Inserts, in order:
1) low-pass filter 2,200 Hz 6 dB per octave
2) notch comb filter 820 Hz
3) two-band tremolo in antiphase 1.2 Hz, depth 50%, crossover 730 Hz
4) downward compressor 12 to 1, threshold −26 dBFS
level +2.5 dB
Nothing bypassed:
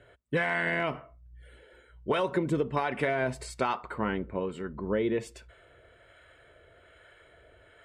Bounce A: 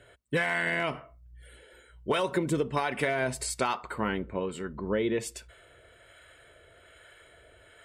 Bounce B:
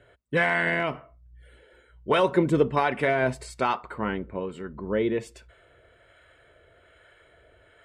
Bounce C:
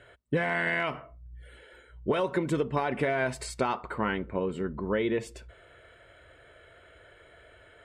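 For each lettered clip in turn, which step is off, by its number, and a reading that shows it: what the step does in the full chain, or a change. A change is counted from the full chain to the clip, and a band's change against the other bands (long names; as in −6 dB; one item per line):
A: 1, 8 kHz band +11.0 dB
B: 4, average gain reduction 2.5 dB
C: 3, change in crest factor −3.0 dB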